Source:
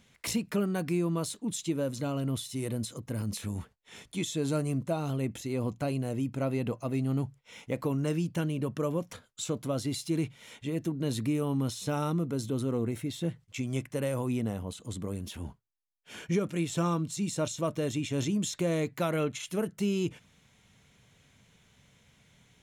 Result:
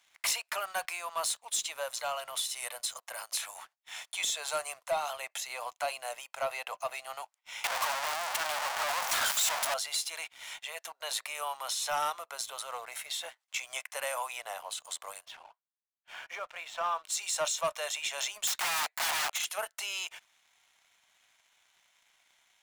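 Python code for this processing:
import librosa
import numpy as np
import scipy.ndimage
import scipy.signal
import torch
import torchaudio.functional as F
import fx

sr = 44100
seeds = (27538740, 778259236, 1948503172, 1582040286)

y = fx.clip_1bit(x, sr, at=(7.64, 9.74))
y = fx.spacing_loss(y, sr, db_at_10k=26, at=(15.24, 17.03), fade=0.02)
y = fx.overflow_wrap(y, sr, gain_db=30.5, at=(18.47, 19.45))
y = scipy.signal.sosfilt(scipy.signal.butter(8, 660.0, 'highpass', fs=sr, output='sos'), y)
y = fx.leveller(y, sr, passes=2)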